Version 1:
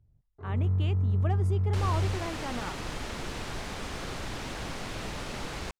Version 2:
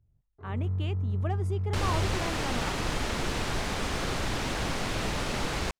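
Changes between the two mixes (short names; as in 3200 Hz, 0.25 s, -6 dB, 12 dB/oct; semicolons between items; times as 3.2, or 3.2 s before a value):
first sound -3.5 dB; second sound +6.0 dB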